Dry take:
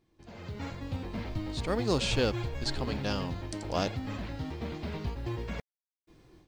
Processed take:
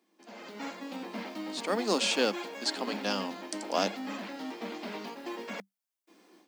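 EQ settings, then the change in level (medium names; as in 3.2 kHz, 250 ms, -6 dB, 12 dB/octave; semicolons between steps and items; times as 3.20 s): rippled Chebyshev high-pass 190 Hz, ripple 3 dB; tilt EQ +1.5 dB/octave; peaking EQ 3.9 kHz -3 dB 0.27 oct; +4.0 dB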